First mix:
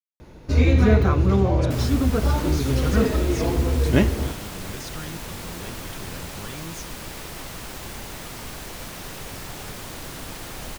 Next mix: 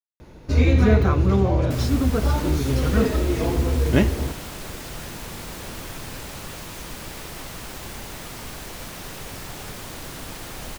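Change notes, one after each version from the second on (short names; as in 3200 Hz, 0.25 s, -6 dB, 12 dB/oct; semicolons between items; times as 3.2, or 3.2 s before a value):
speech -10.5 dB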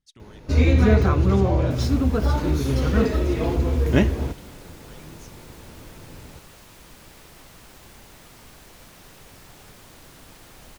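speech: entry -1.55 s; second sound -11.5 dB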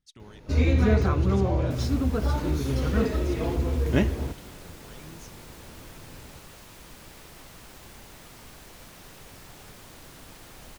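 first sound -4.5 dB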